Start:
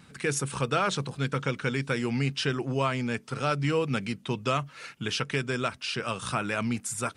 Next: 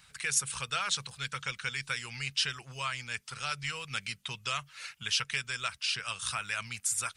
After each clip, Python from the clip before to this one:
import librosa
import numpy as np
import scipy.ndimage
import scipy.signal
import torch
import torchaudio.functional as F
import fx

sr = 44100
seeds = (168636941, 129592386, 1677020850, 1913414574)

y = fx.dynamic_eq(x, sr, hz=680.0, q=0.81, threshold_db=-41.0, ratio=4.0, max_db=-5)
y = fx.hpss(y, sr, part='percussive', gain_db=5)
y = fx.tone_stack(y, sr, knobs='10-0-10')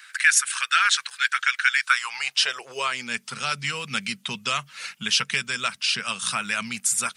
y = fx.filter_sweep_highpass(x, sr, from_hz=1600.0, to_hz=210.0, start_s=1.75, end_s=3.23, q=3.8)
y = y * librosa.db_to_amplitude(8.0)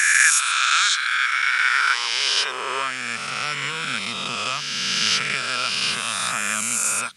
y = fx.spec_swells(x, sr, rise_s=2.84)
y = y * librosa.db_to_amplitude(-4.0)